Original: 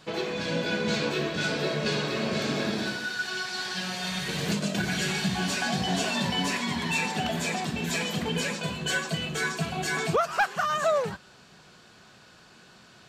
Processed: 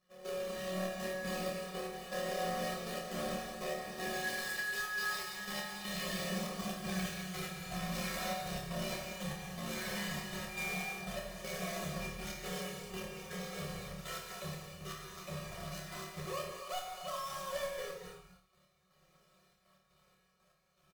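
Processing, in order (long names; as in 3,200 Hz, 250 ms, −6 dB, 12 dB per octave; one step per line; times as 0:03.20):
each half-wave held at its own peak
source passing by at 0:04.38, 41 m/s, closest 4.9 metres
mains-hum notches 50/100/150 Hz
comb filter 1.7 ms, depth 72%
brickwall limiter −45.5 dBFS, peak gain reduction 30.5 dB
gate pattern "..xxxxx.x.xx..x" 193 BPM −12 dB
time stretch by overlap-add 1.6×, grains 29 ms
on a send: flutter between parallel walls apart 4.6 metres, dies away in 0.32 s
on the sum: reverb whose tail is shaped and stops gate 320 ms flat, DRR 1.5 dB
level +12 dB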